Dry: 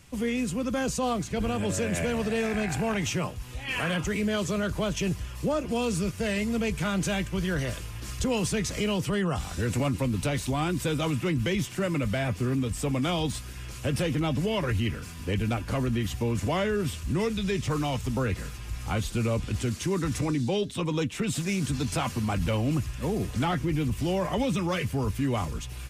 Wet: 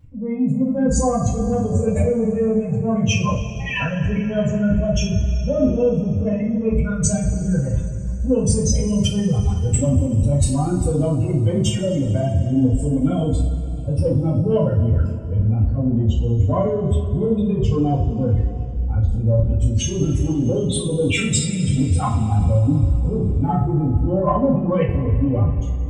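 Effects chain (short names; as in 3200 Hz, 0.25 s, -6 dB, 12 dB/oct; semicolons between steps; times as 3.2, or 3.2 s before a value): spectral contrast raised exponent 3; transient shaper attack -8 dB, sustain +11 dB; two-slope reverb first 0.36 s, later 3.3 s, from -18 dB, DRR -9.5 dB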